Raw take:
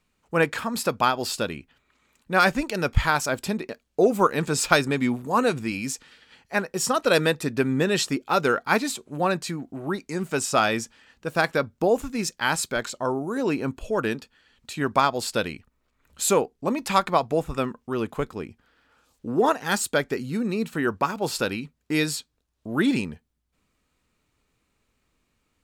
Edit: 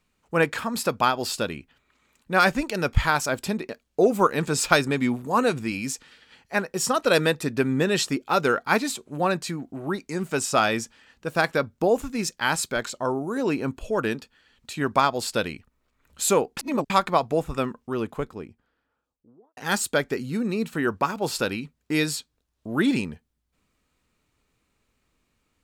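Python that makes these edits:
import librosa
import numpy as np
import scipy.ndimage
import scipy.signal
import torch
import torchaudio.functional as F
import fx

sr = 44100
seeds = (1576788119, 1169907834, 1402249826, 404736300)

y = fx.studio_fade_out(x, sr, start_s=17.67, length_s=1.9)
y = fx.edit(y, sr, fx.reverse_span(start_s=16.57, length_s=0.33), tone=tone)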